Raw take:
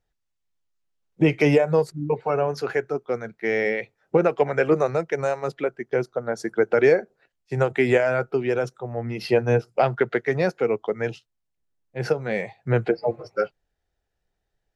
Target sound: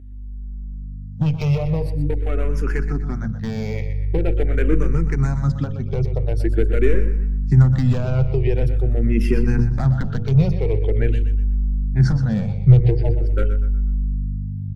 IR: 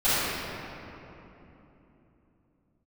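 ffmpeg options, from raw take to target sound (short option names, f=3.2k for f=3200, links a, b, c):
-filter_complex "[0:a]bandreject=f=60:t=h:w=6,bandreject=f=120:t=h:w=6,bandreject=f=180:t=h:w=6,bandreject=f=240:t=h:w=6,bandreject=f=300:t=h:w=6,bandreject=f=360:t=h:w=6,bandreject=f=420:t=h:w=6,bandreject=f=480:t=h:w=6,bandreject=f=540:t=h:w=6,aeval=exprs='0.447*(cos(1*acos(clip(val(0)/0.447,-1,1)))-cos(1*PI/2))+0.0447*(cos(4*acos(clip(val(0)/0.447,-1,1)))-cos(4*PI/2))':c=same,acompressor=threshold=-31dB:ratio=2,volume=21.5dB,asoftclip=hard,volume=-21.5dB,aeval=exprs='val(0)+0.00794*(sin(2*PI*50*n/s)+sin(2*PI*2*50*n/s)/2+sin(2*PI*3*50*n/s)/3+sin(2*PI*4*50*n/s)/4+sin(2*PI*5*50*n/s)/5)':c=same,asubboost=boost=12:cutoff=180,asplit=2[a][b];[b]aecho=0:1:123|246|369|492:0.282|0.107|0.0407|0.0155[c];[a][c]amix=inputs=2:normalize=0,asplit=2[d][e];[e]afreqshift=-0.45[f];[d][f]amix=inputs=2:normalize=1,volume=6dB"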